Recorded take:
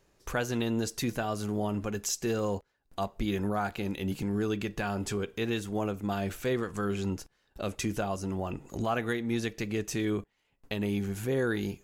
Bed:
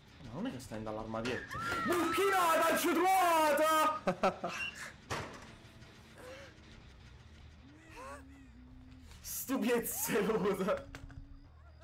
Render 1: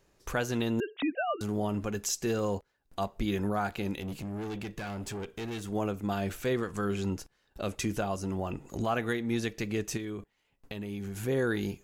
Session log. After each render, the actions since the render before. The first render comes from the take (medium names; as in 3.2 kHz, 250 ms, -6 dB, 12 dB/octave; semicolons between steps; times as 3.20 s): 0.80–1.41 s: formants replaced by sine waves; 4.00–5.64 s: valve stage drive 33 dB, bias 0.45; 9.97–11.20 s: compression, threshold -34 dBFS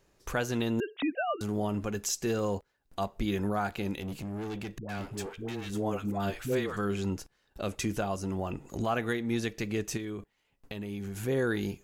4.78–6.77 s: phase dispersion highs, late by 111 ms, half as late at 570 Hz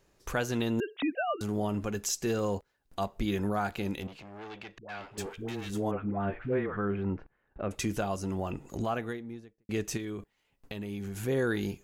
4.07–5.18 s: three-band isolator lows -14 dB, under 500 Hz, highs -22 dB, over 5 kHz; 5.91–7.71 s: low-pass 2.1 kHz 24 dB/octave; 8.63–9.69 s: studio fade out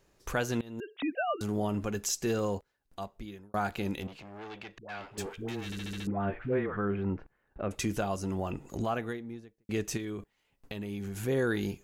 0.61–1.20 s: fade in, from -24 dB; 2.38–3.54 s: fade out; 5.65 s: stutter in place 0.07 s, 6 plays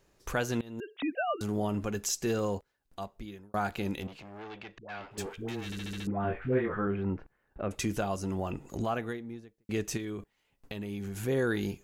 4.42–5.11 s: distance through air 64 m; 6.22–6.87 s: doubling 23 ms -4 dB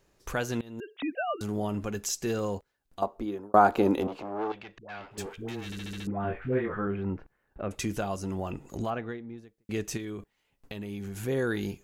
3.02–4.52 s: high-order bell 560 Hz +13.5 dB 2.8 oct; 8.90–9.38 s: distance through air 170 m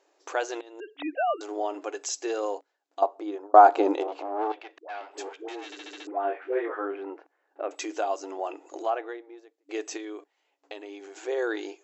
FFT band-pass 280–7800 Hz; peaking EQ 740 Hz +7.5 dB 0.72 oct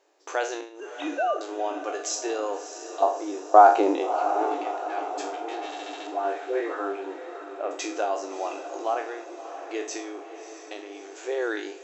spectral sustain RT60 0.42 s; echo that smears into a reverb 636 ms, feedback 58%, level -10.5 dB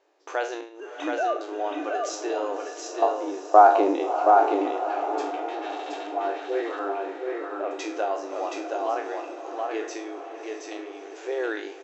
distance through air 100 m; delay 724 ms -3.5 dB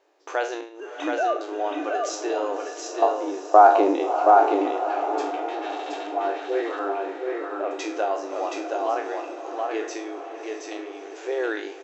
trim +2 dB; peak limiter -3 dBFS, peak gain reduction 2 dB